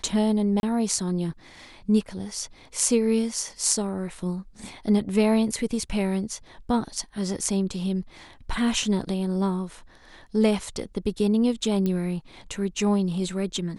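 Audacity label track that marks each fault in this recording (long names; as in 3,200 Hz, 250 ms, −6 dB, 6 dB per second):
0.600000	0.630000	drop-out 31 ms
11.860000	11.860000	click −15 dBFS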